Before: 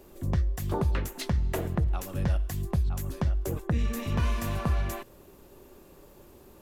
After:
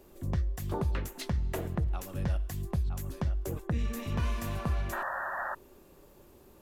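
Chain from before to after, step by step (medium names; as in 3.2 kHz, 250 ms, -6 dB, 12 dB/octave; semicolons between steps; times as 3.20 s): painted sound noise, 4.92–5.55 s, 530–1900 Hz -31 dBFS; trim -4 dB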